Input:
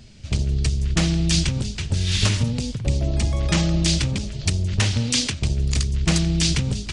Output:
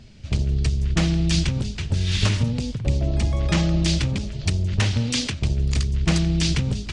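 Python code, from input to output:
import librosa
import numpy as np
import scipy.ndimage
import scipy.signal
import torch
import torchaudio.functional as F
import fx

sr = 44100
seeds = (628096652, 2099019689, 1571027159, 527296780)

y = fx.lowpass(x, sr, hz=3800.0, slope=6)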